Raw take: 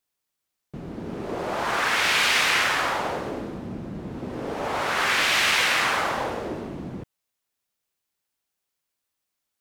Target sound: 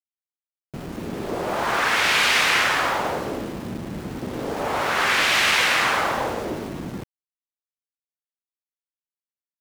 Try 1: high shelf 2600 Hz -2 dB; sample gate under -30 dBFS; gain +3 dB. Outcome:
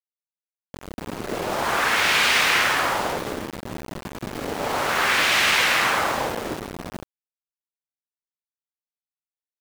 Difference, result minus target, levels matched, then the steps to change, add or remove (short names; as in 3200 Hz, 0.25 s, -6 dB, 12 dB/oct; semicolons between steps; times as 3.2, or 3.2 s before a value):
sample gate: distortion +10 dB
change: sample gate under -37.5 dBFS